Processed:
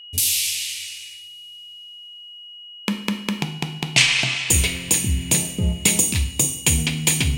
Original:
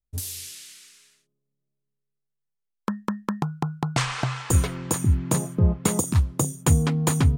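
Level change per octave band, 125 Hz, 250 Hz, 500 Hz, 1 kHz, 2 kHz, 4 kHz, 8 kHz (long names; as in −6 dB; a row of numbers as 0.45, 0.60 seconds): −2.5, 0.0, −2.0, −4.0, +12.0, +15.5, +10.5 decibels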